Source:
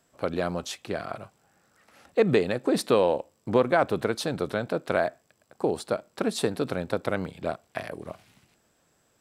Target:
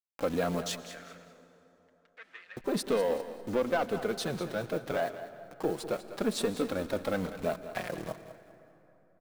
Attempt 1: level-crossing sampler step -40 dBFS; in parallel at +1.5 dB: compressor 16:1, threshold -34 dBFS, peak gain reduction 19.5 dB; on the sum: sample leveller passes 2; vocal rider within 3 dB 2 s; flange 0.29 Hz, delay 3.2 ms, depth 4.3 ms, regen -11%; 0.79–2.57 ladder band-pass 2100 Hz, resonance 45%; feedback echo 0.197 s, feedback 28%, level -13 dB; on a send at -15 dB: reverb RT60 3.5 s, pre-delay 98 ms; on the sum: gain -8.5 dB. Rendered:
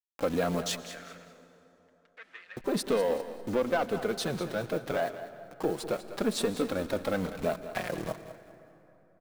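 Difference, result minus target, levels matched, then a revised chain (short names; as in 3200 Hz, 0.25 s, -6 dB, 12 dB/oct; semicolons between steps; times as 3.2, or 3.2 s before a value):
compressor: peak gain reduction -11 dB
level-crossing sampler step -40 dBFS; in parallel at +1.5 dB: compressor 16:1, threshold -45.5 dBFS, peak gain reduction 30 dB; on the sum: sample leveller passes 2; vocal rider within 3 dB 2 s; flange 0.29 Hz, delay 3.2 ms, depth 4.3 ms, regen -11%; 0.79–2.57 ladder band-pass 2100 Hz, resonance 45%; feedback echo 0.197 s, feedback 28%, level -13 dB; on a send at -15 dB: reverb RT60 3.5 s, pre-delay 98 ms; on the sum: gain -8.5 dB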